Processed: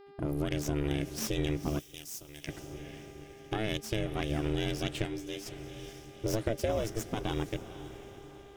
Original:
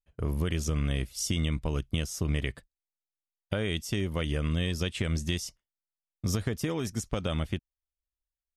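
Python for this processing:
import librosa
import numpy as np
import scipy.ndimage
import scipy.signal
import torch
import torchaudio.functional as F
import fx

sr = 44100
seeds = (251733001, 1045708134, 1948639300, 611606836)

y = fx.tracing_dist(x, sr, depth_ms=0.063)
y = fx.echo_diffused(y, sr, ms=496, feedback_pct=50, wet_db=-12.5)
y = y * np.sin(2.0 * np.pi * 220.0 * np.arange(len(y)) / sr)
y = fx.peak_eq(y, sr, hz=570.0, db=12.0, octaves=0.26, at=(6.25, 6.84))
y = fx.dmg_buzz(y, sr, base_hz=400.0, harmonics=13, level_db=-54.0, tilt_db=-9, odd_only=False)
y = fx.pre_emphasis(y, sr, coefficient=0.9, at=(1.78, 2.47), fade=0.02)
y = fx.comb_fb(y, sr, f0_hz=98.0, decay_s=0.16, harmonics='all', damping=0.0, mix_pct=100, at=(5.05, 5.45), fade=0.02)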